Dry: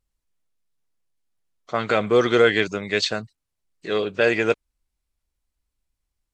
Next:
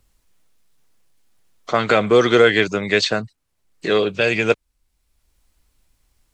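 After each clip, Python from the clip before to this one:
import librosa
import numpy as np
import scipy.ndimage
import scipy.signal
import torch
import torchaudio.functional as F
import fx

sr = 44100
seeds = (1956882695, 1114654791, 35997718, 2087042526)

y = fx.spec_box(x, sr, start_s=4.11, length_s=0.39, low_hz=230.0, high_hz=2100.0, gain_db=-7)
y = fx.band_squash(y, sr, depth_pct=40)
y = F.gain(torch.from_numpy(y), 5.0).numpy()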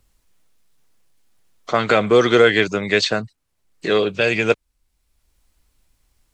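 y = x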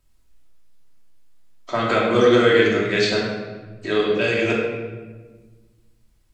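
y = fx.room_shoebox(x, sr, seeds[0], volume_m3=1100.0, walls='mixed', distance_m=2.8)
y = F.gain(torch.from_numpy(y), -7.5).numpy()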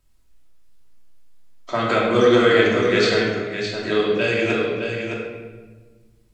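y = x + 10.0 ** (-7.0 / 20.0) * np.pad(x, (int(613 * sr / 1000.0), 0))[:len(x)]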